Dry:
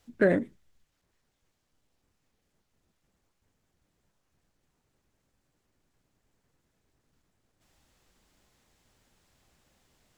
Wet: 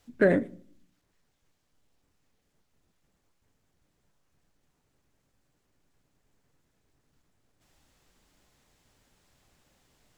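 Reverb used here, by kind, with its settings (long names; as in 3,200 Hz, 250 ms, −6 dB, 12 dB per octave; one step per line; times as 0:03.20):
rectangular room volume 660 cubic metres, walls furnished, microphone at 0.33 metres
level +1 dB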